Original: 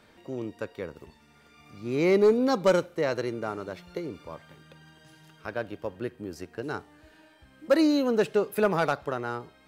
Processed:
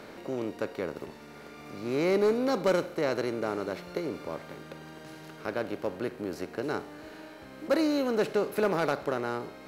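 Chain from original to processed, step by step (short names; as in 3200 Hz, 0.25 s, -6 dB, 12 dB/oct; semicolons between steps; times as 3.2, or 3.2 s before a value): per-bin compression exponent 0.6; gain -6 dB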